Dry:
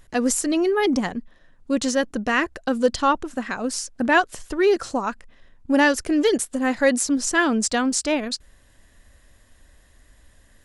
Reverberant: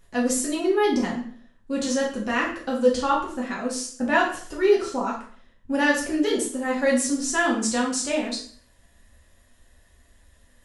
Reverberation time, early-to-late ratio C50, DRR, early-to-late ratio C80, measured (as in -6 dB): 0.50 s, 6.0 dB, -4.0 dB, 10.5 dB